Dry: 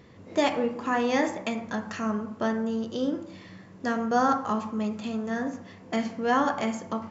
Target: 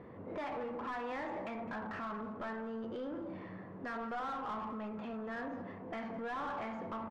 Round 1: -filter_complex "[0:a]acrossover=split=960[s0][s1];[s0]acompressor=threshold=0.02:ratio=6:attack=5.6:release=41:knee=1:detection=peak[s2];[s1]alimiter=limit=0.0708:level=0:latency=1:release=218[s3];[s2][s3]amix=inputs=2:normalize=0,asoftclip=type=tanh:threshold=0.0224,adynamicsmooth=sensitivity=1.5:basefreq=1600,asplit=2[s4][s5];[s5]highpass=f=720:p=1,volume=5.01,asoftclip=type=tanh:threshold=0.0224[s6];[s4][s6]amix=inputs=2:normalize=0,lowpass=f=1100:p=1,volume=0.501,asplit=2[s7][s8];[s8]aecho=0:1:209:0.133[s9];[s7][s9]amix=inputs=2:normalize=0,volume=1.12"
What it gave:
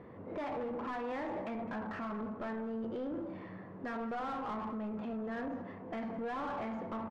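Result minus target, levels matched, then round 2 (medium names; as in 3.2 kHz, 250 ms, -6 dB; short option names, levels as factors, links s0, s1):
compression: peak gain reduction -6.5 dB
-filter_complex "[0:a]acrossover=split=960[s0][s1];[s0]acompressor=threshold=0.00841:ratio=6:attack=5.6:release=41:knee=1:detection=peak[s2];[s1]alimiter=limit=0.0708:level=0:latency=1:release=218[s3];[s2][s3]amix=inputs=2:normalize=0,asoftclip=type=tanh:threshold=0.0224,adynamicsmooth=sensitivity=1.5:basefreq=1600,asplit=2[s4][s5];[s5]highpass=f=720:p=1,volume=5.01,asoftclip=type=tanh:threshold=0.0224[s6];[s4][s6]amix=inputs=2:normalize=0,lowpass=f=1100:p=1,volume=0.501,asplit=2[s7][s8];[s8]aecho=0:1:209:0.133[s9];[s7][s9]amix=inputs=2:normalize=0,volume=1.12"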